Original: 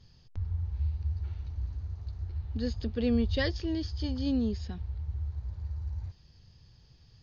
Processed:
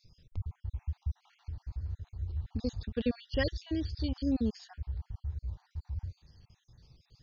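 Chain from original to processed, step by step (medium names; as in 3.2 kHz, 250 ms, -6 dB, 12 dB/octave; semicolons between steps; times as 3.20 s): random holes in the spectrogram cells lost 49%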